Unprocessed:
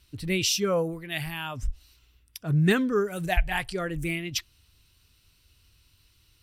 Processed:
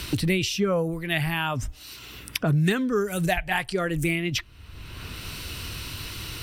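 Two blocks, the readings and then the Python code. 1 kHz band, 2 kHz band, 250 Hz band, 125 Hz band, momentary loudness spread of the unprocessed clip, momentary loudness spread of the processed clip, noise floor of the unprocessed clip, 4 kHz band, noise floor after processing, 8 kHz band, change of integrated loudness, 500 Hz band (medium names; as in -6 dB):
+3.5 dB, +3.5 dB, +2.5 dB, +3.0 dB, 12 LU, 17 LU, -64 dBFS, +1.5 dB, -46 dBFS, -1.5 dB, +1.0 dB, +1.5 dB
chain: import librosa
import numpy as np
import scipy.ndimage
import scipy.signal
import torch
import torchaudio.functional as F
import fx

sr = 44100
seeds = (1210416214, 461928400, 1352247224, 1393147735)

y = fx.band_squash(x, sr, depth_pct=100)
y = F.gain(torch.from_numpy(y), 2.5).numpy()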